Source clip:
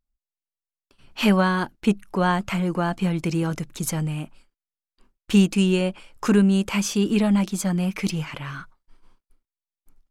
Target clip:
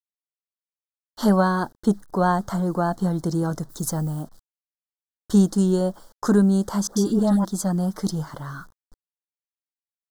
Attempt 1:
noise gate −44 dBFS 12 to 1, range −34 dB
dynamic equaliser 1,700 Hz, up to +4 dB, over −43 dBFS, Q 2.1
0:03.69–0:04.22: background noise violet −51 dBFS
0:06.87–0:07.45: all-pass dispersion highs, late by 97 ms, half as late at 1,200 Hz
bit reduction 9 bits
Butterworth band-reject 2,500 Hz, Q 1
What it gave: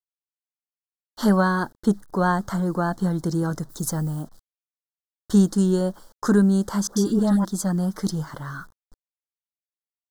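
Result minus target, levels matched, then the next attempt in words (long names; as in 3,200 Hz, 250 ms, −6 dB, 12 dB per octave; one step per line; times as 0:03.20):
2,000 Hz band +3.5 dB
noise gate −44 dBFS 12 to 1, range −34 dB
dynamic equaliser 700 Hz, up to +4 dB, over −43 dBFS, Q 2.1
0:03.69–0:04.22: background noise violet −51 dBFS
0:06.87–0:07.45: all-pass dispersion highs, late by 97 ms, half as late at 1,200 Hz
bit reduction 9 bits
Butterworth band-reject 2,500 Hz, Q 1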